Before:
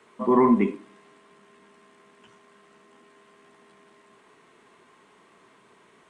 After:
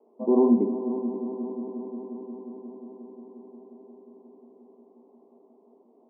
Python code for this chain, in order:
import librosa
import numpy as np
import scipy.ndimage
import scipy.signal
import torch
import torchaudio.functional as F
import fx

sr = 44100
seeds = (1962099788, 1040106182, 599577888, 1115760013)

y = scipy.signal.sosfilt(scipy.signal.ellip(3, 1.0, 40, [230.0, 790.0], 'bandpass', fs=sr, output='sos'), x)
y = fx.echo_heads(y, sr, ms=178, heads='all three', feedback_pct=74, wet_db=-15.5)